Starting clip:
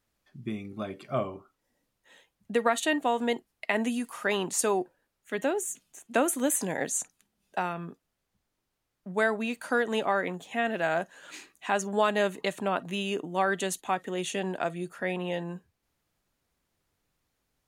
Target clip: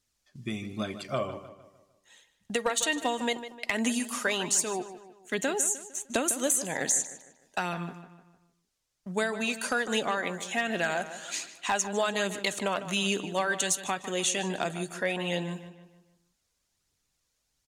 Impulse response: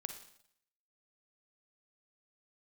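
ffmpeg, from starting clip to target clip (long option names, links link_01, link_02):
-filter_complex "[0:a]agate=range=-7dB:threshold=-52dB:ratio=16:detection=peak,equalizer=frequency=6400:width=0.59:gain=13.5,acompressor=threshold=-25dB:ratio=6,flanger=delay=0.2:depth=1.9:regen=54:speed=1.3:shape=triangular,asoftclip=type=hard:threshold=-22.5dB,asplit=2[link_01][link_02];[link_02]adelay=152,lowpass=frequency=3900:poles=1,volume=-12dB,asplit=2[link_03][link_04];[link_04]adelay=152,lowpass=frequency=3900:poles=1,volume=0.45,asplit=2[link_05][link_06];[link_06]adelay=152,lowpass=frequency=3900:poles=1,volume=0.45,asplit=2[link_07][link_08];[link_08]adelay=152,lowpass=frequency=3900:poles=1,volume=0.45,asplit=2[link_09][link_10];[link_10]adelay=152,lowpass=frequency=3900:poles=1,volume=0.45[link_11];[link_03][link_05][link_07][link_09][link_11]amix=inputs=5:normalize=0[link_12];[link_01][link_12]amix=inputs=2:normalize=0,volume=5.5dB"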